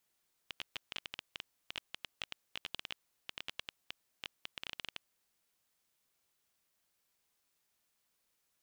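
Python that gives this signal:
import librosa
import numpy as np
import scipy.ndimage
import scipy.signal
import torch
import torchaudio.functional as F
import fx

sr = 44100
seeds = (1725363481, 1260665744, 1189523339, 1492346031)

y = fx.geiger_clicks(sr, seeds[0], length_s=4.62, per_s=12.0, level_db=-22.5)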